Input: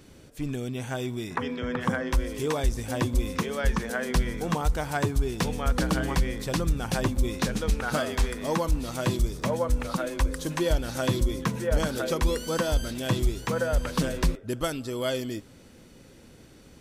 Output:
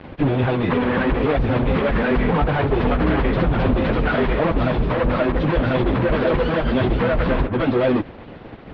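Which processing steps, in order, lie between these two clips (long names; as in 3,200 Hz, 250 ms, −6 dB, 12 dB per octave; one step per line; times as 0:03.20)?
fuzz pedal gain 41 dB, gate −49 dBFS
time stretch by phase vocoder 0.52×
Bessel low-pass filter 2,000 Hz, order 8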